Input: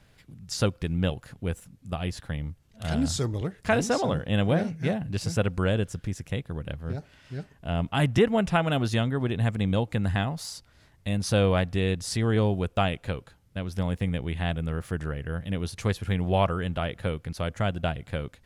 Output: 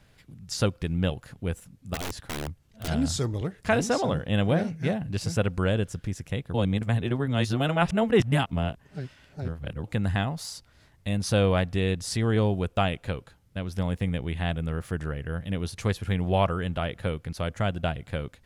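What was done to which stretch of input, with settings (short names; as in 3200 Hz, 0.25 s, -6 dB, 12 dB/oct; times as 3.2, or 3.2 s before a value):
1.94–2.88 wrapped overs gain 26.5 dB
6.54–9.84 reverse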